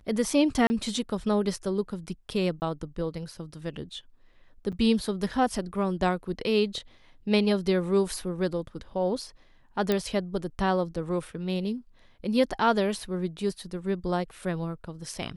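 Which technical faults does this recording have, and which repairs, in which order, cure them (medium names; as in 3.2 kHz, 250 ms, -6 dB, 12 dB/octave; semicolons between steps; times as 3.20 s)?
0.67–0.70 s: dropout 30 ms
2.60–2.62 s: dropout 19 ms
4.72–4.73 s: dropout 6.7 ms
9.92 s: pop -12 dBFS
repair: de-click; interpolate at 0.67 s, 30 ms; interpolate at 2.60 s, 19 ms; interpolate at 4.72 s, 6.7 ms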